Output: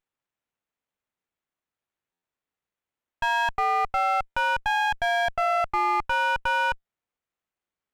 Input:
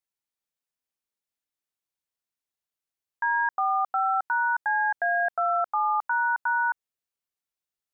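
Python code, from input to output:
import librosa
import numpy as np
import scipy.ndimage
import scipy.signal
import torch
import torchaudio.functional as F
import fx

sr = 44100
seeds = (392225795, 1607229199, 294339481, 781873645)

y = fx.buffer_glitch(x, sr, at_s=(2.12, 4.26, 6.75), block=512, repeats=8)
y = fx.running_max(y, sr, window=9)
y = F.gain(torch.from_numpy(y), 2.0).numpy()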